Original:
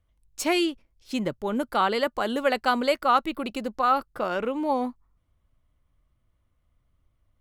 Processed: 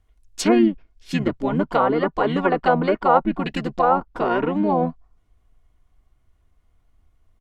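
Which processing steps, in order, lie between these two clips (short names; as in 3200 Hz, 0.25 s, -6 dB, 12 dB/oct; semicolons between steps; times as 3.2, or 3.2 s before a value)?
comb 2.8 ms, depth 41%; treble ducked by the level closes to 1300 Hz, closed at -19.5 dBFS; harmoniser -7 st -1 dB, -5 st -15 dB; gain +3.5 dB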